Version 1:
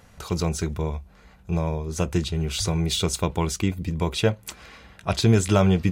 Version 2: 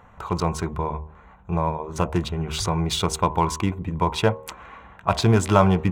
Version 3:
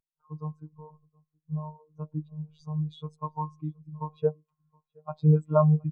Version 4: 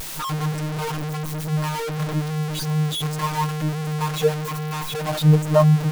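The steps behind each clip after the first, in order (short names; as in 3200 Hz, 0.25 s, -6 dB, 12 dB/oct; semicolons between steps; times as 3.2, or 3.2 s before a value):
Wiener smoothing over 9 samples; bell 1000 Hz +12 dB 0.89 oct; de-hum 77.56 Hz, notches 14
robotiser 153 Hz; echo 0.72 s -12 dB; spectral expander 2.5:1; gain -6.5 dB
zero-crossing step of -25 dBFS; gain +4 dB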